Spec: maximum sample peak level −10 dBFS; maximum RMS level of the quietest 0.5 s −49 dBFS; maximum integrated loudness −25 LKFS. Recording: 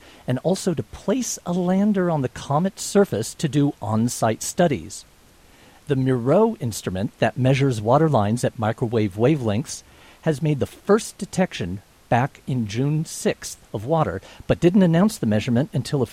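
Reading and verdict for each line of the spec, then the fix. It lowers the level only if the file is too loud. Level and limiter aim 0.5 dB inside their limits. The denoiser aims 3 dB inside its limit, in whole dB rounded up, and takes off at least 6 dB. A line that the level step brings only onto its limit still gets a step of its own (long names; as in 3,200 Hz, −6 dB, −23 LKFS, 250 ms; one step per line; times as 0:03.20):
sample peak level −4.5 dBFS: out of spec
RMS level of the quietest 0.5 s −52 dBFS: in spec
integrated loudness −22.0 LKFS: out of spec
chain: level −3.5 dB
brickwall limiter −10.5 dBFS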